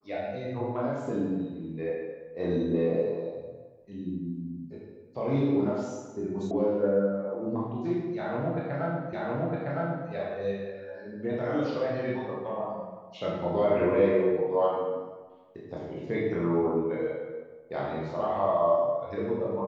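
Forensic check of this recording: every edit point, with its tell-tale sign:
0:06.51: cut off before it has died away
0:09.13: the same again, the last 0.96 s

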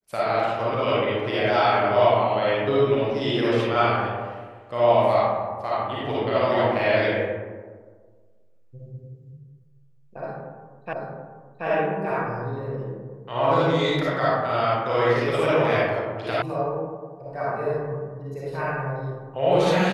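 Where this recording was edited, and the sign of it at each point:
0:10.93: the same again, the last 0.73 s
0:16.42: cut off before it has died away

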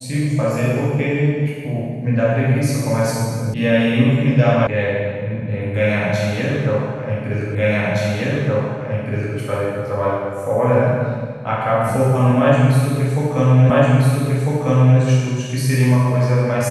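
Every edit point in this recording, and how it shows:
0:03.54: cut off before it has died away
0:04.67: cut off before it has died away
0:07.55: the same again, the last 1.82 s
0:13.70: the same again, the last 1.3 s

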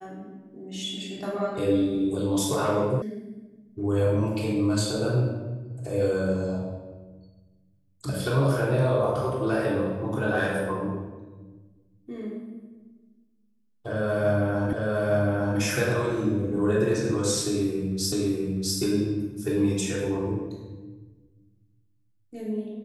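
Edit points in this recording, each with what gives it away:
0:03.02: cut off before it has died away
0:14.73: the same again, the last 0.86 s
0:18.12: the same again, the last 0.65 s

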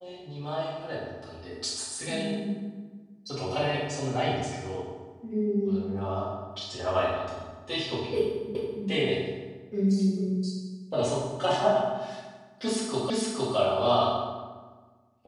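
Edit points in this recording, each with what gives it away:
0:08.55: the same again, the last 0.28 s
0:13.10: the same again, the last 0.46 s

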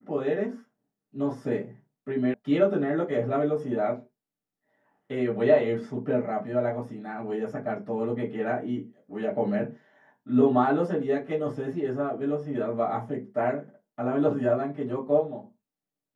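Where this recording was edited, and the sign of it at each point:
0:02.34: cut off before it has died away

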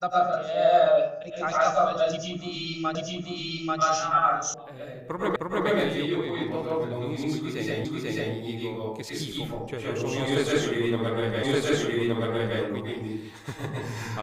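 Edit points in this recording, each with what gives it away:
0:02.95: the same again, the last 0.84 s
0:04.54: cut off before it has died away
0:05.36: the same again, the last 0.31 s
0:07.85: the same again, the last 0.49 s
0:11.43: the same again, the last 1.17 s

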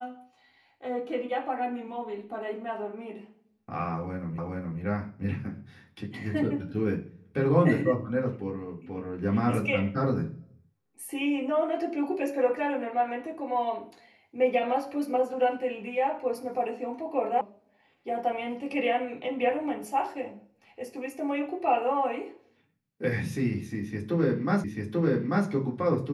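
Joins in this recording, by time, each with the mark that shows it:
0:04.38: the same again, the last 0.42 s
0:17.41: cut off before it has died away
0:24.64: the same again, the last 0.84 s

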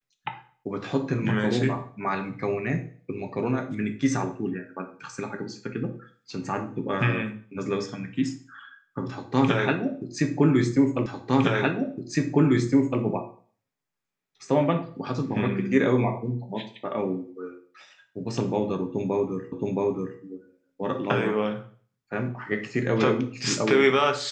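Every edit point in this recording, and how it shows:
0:11.06: the same again, the last 1.96 s
0:19.52: the same again, the last 0.67 s

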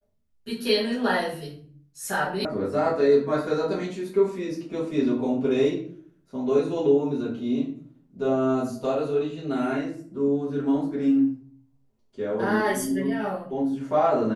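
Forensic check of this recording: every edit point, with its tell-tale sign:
0:02.45: cut off before it has died away

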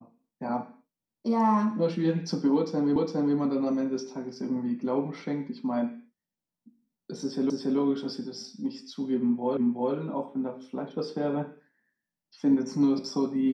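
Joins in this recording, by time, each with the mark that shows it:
0:02.96: the same again, the last 0.41 s
0:07.50: the same again, the last 0.28 s
0:09.57: the same again, the last 0.37 s

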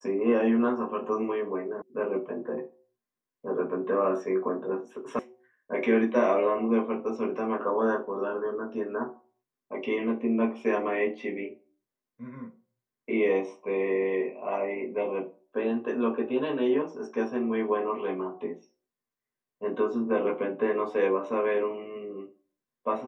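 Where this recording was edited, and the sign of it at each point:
0:01.82: cut off before it has died away
0:05.19: cut off before it has died away

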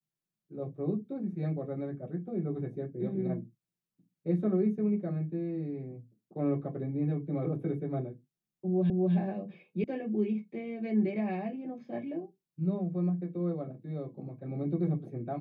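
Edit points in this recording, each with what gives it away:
0:08.90: the same again, the last 0.25 s
0:09.84: cut off before it has died away

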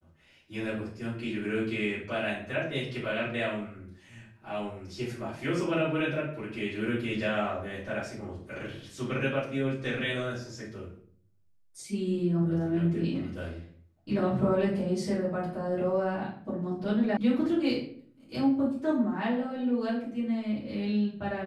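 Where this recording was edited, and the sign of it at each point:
0:17.17: cut off before it has died away

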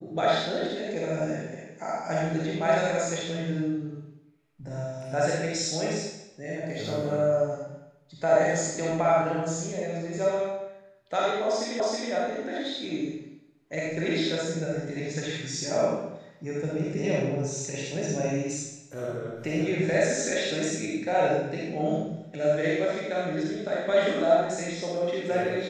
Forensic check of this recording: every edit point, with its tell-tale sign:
0:11.80: the same again, the last 0.32 s

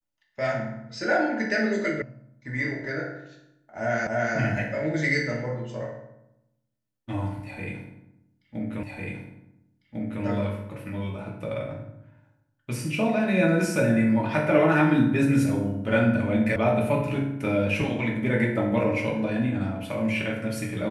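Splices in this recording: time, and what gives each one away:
0:02.02: cut off before it has died away
0:04.07: the same again, the last 0.29 s
0:08.83: the same again, the last 1.4 s
0:16.56: cut off before it has died away

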